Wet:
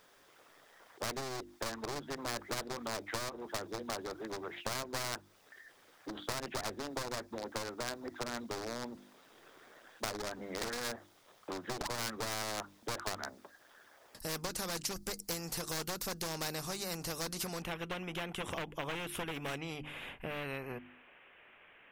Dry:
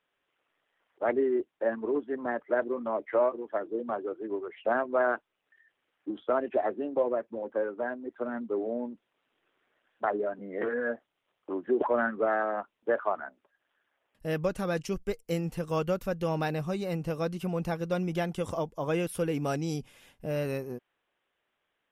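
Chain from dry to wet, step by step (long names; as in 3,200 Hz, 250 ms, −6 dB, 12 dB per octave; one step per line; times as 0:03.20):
wavefolder on the positive side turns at −28 dBFS
high shelf with overshoot 3,700 Hz +8 dB, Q 3, from 0:17.62 −7.5 dB, from 0:19.58 −13.5 dB
downward compressor, threshold −35 dBFS, peak gain reduction 12.5 dB
parametric band 9,200 Hz −3 dB 2.6 octaves
mains-hum notches 50/100/150/200/250/300/350 Hz
every bin compressed towards the loudest bin 2 to 1
level +5 dB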